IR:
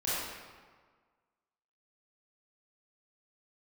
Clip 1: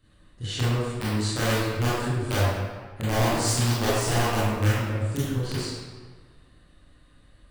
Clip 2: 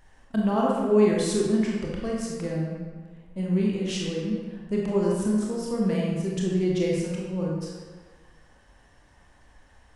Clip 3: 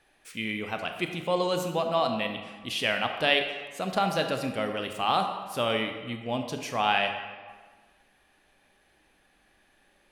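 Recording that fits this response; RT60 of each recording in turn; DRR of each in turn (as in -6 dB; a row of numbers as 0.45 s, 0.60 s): 1; 1.6 s, 1.6 s, 1.5 s; -11.0 dB, -3.5 dB, 5.0 dB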